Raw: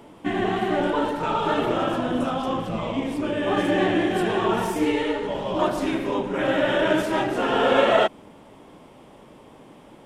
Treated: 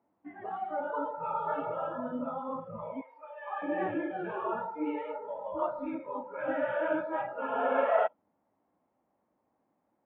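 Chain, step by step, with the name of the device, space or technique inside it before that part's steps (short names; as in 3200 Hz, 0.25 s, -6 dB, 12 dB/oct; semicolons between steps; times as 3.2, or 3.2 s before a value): spectral noise reduction 20 dB; 3.01–3.62 HPF 770 Hz 24 dB/oct; bass cabinet (speaker cabinet 79–2000 Hz, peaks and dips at 140 Hz -9 dB, 420 Hz -6 dB, 740 Hz +5 dB); high shelf 6300 Hz -8.5 dB; gain -8.5 dB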